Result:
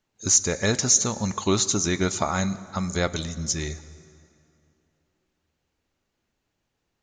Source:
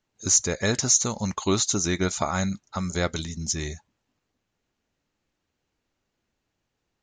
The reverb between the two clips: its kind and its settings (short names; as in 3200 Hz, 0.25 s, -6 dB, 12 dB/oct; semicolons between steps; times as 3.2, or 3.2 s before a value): plate-style reverb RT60 2.7 s, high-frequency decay 0.7×, DRR 15 dB; gain +1 dB